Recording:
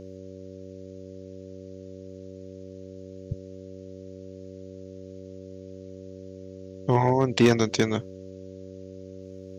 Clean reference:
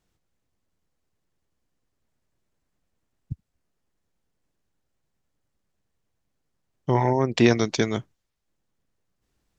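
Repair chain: clip repair -10 dBFS; de-hum 94.5 Hz, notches 6; expander -35 dBFS, range -21 dB

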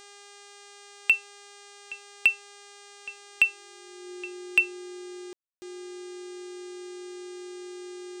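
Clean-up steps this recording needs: clip repair -11 dBFS; de-hum 404.8 Hz, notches 22; notch 360 Hz, Q 30; room tone fill 5.33–5.62

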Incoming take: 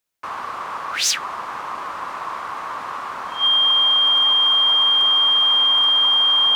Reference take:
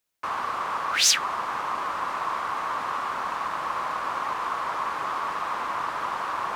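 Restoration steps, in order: clip repair -10.5 dBFS; notch 3200 Hz, Q 30

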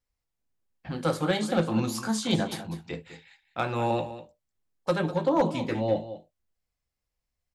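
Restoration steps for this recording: clip repair -15.5 dBFS; inverse comb 0.199 s -13.5 dB

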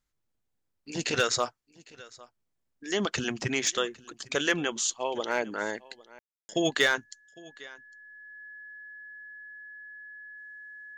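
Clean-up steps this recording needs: clip repair -15 dBFS; notch 1700 Hz, Q 30; room tone fill 6.19–6.49; inverse comb 0.805 s -22.5 dB

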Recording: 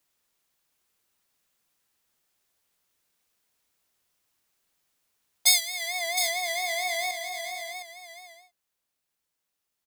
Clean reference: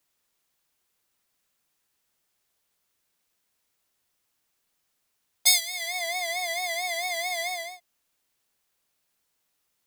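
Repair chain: clip repair -5 dBFS; inverse comb 0.713 s -8 dB; gain correction +7.5 dB, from 7.11

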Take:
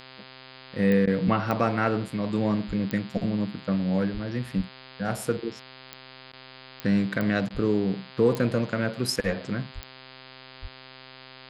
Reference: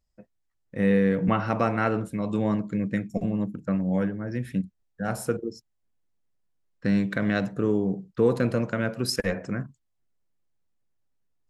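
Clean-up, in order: de-click; de-hum 130.5 Hz, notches 38; de-plosive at 2.67/4.13/4.56/7.53/9.74/10.61; interpolate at 1.06/6.32/7.49, 12 ms

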